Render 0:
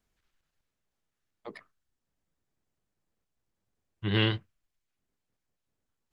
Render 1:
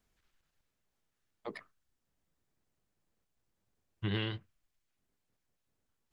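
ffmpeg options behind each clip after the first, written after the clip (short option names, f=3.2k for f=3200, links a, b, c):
-af "acompressor=threshold=-32dB:ratio=10,volume=1dB"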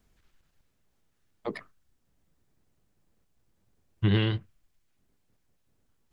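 -af "lowshelf=f=420:g=6.5,volume=5.5dB"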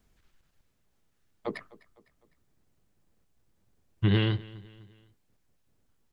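-af "aecho=1:1:253|506|759:0.0891|0.041|0.0189"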